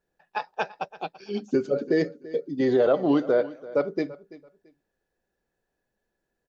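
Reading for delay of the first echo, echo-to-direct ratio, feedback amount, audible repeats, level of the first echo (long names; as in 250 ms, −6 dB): 336 ms, −18.5 dB, 23%, 2, −18.5 dB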